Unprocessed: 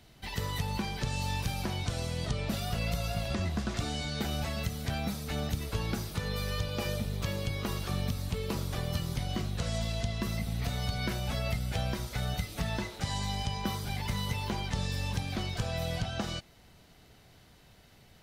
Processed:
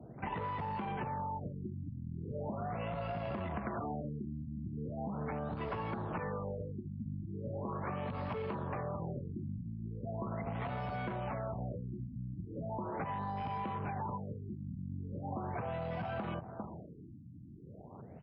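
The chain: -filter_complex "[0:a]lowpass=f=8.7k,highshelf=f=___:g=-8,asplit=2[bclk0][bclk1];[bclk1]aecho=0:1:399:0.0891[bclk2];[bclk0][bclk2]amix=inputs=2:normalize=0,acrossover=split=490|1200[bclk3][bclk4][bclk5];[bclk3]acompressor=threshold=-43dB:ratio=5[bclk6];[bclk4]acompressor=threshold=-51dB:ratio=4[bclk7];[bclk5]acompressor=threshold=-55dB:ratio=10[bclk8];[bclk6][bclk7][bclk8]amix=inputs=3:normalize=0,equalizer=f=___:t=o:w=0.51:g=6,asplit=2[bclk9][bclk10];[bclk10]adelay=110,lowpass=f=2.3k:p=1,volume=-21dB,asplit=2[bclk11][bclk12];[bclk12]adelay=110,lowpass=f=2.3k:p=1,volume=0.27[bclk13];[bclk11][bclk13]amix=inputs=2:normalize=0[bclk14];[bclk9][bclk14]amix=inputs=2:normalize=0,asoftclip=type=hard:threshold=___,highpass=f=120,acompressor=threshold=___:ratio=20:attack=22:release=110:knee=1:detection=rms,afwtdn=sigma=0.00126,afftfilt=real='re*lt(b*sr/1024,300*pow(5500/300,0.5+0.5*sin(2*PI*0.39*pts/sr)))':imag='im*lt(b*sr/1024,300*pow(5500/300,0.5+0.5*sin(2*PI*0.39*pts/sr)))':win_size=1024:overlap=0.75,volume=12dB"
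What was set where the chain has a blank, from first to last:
3.1k, 990, -38.5dB, -47dB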